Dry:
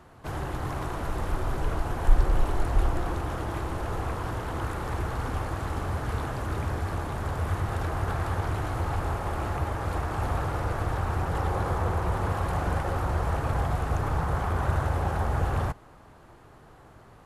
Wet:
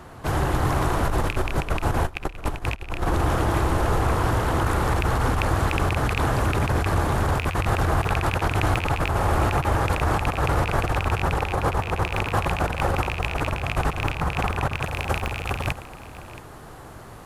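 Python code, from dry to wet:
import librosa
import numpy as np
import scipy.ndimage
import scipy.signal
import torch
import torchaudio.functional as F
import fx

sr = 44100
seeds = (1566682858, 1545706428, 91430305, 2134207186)

y = fx.rattle_buzz(x, sr, strikes_db=-24.0, level_db=-12.0)
y = fx.high_shelf(y, sr, hz=5700.0, db=fx.steps((0.0, 2.5), (14.82, 9.0)))
y = fx.over_compress(y, sr, threshold_db=-29.0, ratio=-0.5)
y = y + 10.0 ** (-16.0 / 20.0) * np.pad(y, (int(675 * sr / 1000.0), 0))[:len(y)]
y = F.gain(torch.from_numpy(y), 6.5).numpy()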